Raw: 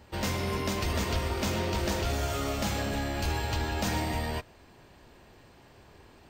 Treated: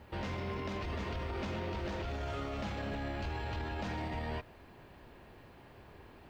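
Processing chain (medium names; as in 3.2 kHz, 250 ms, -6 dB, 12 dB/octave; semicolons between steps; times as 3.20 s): low-pass 3.1 kHz 12 dB/octave; peak limiter -30.5 dBFS, peak gain reduction 11 dB; added noise blue -79 dBFS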